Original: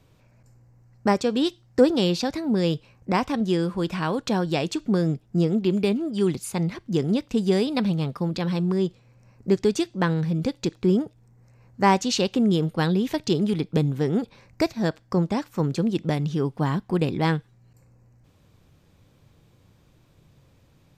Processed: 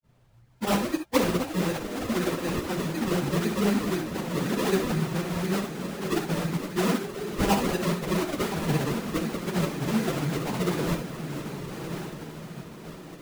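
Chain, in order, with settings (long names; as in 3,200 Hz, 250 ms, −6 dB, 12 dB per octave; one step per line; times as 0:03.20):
low-pass filter 6,700 Hz 12 dB per octave
feedback delay with all-pass diffusion 1,902 ms, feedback 48%, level −7.5 dB
granular cloud
sample-and-hold swept by an LFO 40×, swing 100% 2.5 Hz
reverb whose tail is shaped and stops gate 130 ms rising, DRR 7 dB
time stretch by phase vocoder 0.63×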